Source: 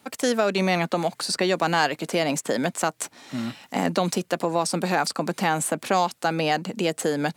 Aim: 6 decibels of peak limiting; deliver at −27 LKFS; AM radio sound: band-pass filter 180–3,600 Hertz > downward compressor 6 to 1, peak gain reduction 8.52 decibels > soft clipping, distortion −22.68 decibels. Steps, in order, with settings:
brickwall limiter −14 dBFS
band-pass filter 180–3,600 Hz
downward compressor 6 to 1, threshold −28 dBFS
soft clipping −20 dBFS
level +7 dB

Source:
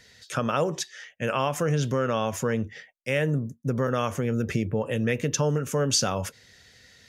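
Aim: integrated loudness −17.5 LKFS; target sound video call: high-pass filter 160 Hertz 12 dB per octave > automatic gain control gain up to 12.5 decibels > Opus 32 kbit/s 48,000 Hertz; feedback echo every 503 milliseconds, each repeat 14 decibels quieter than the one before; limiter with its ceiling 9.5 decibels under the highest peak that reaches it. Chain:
brickwall limiter −20 dBFS
high-pass filter 160 Hz 12 dB per octave
repeating echo 503 ms, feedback 20%, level −14 dB
automatic gain control gain up to 12.5 dB
level +14.5 dB
Opus 32 kbit/s 48,000 Hz

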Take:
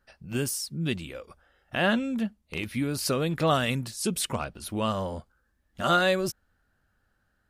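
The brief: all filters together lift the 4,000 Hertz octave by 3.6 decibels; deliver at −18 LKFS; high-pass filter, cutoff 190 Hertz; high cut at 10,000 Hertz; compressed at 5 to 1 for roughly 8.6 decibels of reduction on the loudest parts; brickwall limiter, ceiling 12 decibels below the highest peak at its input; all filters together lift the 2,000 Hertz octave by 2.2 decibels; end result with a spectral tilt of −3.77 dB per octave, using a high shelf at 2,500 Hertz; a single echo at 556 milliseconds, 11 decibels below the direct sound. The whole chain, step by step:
high-pass filter 190 Hz
low-pass filter 10,000 Hz
parametric band 2,000 Hz +4 dB
high-shelf EQ 2,500 Hz −6.5 dB
parametric band 4,000 Hz +9 dB
downward compressor 5 to 1, threshold −27 dBFS
brickwall limiter −25.5 dBFS
single-tap delay 556 ms −11 dB
level +18.5 dB

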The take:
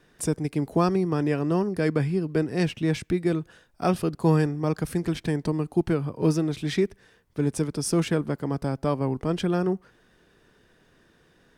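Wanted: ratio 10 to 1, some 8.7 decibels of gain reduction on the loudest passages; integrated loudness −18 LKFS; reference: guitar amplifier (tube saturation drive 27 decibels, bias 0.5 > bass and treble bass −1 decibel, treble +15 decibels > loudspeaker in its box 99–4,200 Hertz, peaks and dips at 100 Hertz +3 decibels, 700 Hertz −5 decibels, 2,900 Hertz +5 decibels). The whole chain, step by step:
downward compressor 10 to 1, threshold −25 dBFS
tube saturation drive 27 dB, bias 0.5
bass and treble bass −1 dB, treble +15 dB
loudspeaker in its box 99–4,200 Hz, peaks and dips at 100 Hz +3 dB, 700 Hz −5 dB, 2,900 Hz +5 dB
level +17.5 dB

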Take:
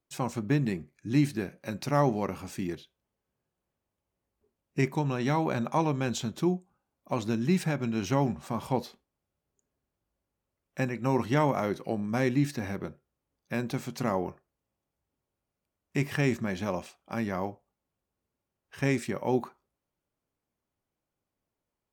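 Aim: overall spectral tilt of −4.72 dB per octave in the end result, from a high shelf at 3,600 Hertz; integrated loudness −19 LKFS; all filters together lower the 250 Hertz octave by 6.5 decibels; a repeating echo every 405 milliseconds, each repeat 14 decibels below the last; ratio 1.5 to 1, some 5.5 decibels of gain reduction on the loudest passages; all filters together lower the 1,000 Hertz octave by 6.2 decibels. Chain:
parametric band 250 Hz −8.5 dB
parametric band 1,000 Hz −8 dB
high-shelf EQ 3,600 Hz +7.5 dB
downward compressor 1.5 to 1, threshold −40 dBFS
repeating echo 405 ms, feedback 20%, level −14 dB
level +19 dB

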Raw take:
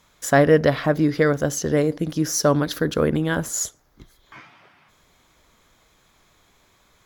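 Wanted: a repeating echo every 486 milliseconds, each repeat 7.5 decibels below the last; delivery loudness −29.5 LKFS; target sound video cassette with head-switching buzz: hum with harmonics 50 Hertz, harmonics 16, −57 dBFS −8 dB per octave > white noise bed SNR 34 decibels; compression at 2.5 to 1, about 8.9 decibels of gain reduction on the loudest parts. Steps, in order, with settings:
downward compressor 2.5 to 1, threshold −24 dBFS
repeating echo 486 ms, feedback 42%, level −7.5 dB
hum with harmonics 50 Hz, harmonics 16, −57 dBFS −8 dB per octave
white noise bed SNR 34 dB
level −3 dB

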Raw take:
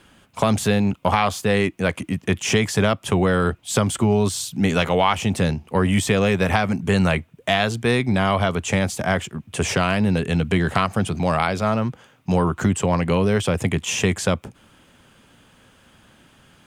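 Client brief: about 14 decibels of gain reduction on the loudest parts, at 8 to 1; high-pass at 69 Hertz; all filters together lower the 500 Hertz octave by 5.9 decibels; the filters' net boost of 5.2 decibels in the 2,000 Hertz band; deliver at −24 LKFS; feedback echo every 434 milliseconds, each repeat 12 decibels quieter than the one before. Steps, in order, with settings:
high-pass filter 69 Hz
parametric band 500 Hz −8 dB
parametric band 2,000 Hz +7 dB
downward compressor 8 to 1, threshold −29 dBFS
repeating echo 434 ms, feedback 25%, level −12 dB
level +8.5 dB

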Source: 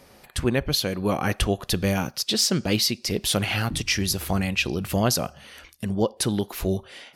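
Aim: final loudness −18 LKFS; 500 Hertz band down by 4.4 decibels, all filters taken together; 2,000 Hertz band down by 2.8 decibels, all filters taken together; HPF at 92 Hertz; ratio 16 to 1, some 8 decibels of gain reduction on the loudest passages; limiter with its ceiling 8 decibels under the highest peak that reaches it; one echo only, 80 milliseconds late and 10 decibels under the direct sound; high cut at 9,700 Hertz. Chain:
high-pass filter 92 Hz
low-pass filter 9,700 Hz
parametric band 500 Hz −5.5 dB
parametric band 2,000 Hz −3.5 dB
downward compressor 16 to 1, threshold −27 dBFS
brickwall limiter −24 dBFS
single-tap delay 80 ms −10 dB
level +16.5 dB

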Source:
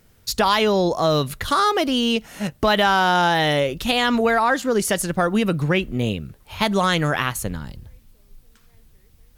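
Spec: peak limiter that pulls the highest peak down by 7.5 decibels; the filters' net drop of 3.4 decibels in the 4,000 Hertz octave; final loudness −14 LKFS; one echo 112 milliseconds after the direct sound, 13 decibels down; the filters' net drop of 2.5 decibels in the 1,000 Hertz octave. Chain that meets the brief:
parametric band 1,000 Hz −3 dB
parametric band 4,000 Hz −4.5 dB
brickwall limiter −14.5 dBFS
single-tap delay 112 ms −13 dB
level +10.5 dB

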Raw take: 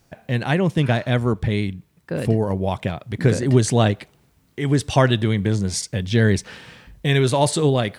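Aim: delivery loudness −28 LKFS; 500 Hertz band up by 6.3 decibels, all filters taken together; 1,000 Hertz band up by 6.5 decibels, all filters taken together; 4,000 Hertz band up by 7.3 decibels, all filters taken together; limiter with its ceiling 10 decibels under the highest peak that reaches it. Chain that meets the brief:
parametric band 500 Hz +6.5 dB
parametric band 1,000 Hz +5.5 dB
parametric band 4,000 Hz +8.5 dB
level −8 dB
brickwall limiter −15.5 dBFS

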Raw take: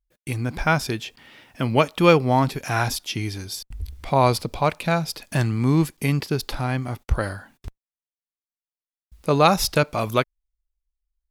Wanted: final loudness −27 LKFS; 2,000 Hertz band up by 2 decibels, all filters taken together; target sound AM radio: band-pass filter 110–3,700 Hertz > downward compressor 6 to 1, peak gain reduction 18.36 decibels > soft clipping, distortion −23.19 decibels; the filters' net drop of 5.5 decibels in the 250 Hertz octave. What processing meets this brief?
band-pass filter 110–3,700 Hz
parametric band 250 Hz −8 dB
parametric band 2,000 Hz +3.5 dB
downward compressor 6 to 1, threshold −30 dBFS
soft clipping −18 dBFS
level +9 dB

